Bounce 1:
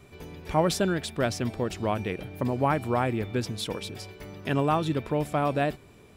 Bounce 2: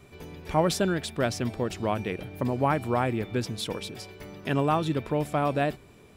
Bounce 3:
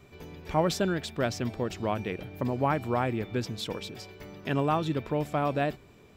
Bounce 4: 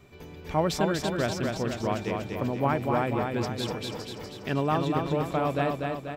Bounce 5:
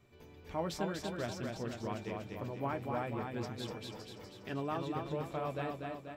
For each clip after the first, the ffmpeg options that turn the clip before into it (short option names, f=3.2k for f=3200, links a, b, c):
-af "bandreject=f=50:t=h:w=6,bandreject=f=100:t=h:w=6"
-af "equalizer=f=9.7k:t=o:w=0.29:g=-11.5,volume=-2dB"
-af "aecho=1:1:243|486|729|972|1215|1458|1701:0.631|0.347|0.191|0.105|0.0577|0.0318|0.0175"
-af "flanger=delay=8.6:depth=1.5:regen=-47:speed=0.57:shape=sinusoidal,volume=-7dB"